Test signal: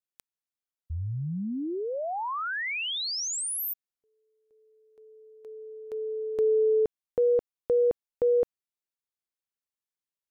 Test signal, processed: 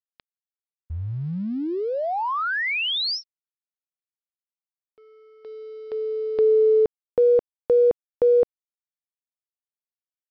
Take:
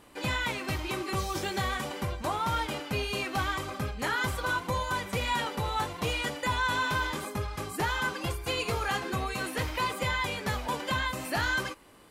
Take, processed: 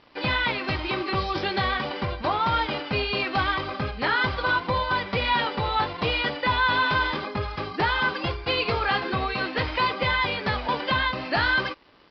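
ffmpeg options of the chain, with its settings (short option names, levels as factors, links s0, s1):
-af "lowshelf=f=230:g=-4.5,aresample=11025,aeval=exprs='sgn(val(0))*max(abs(val(0))-0.001,0)':c=same,aresample=44100,volume=2.24"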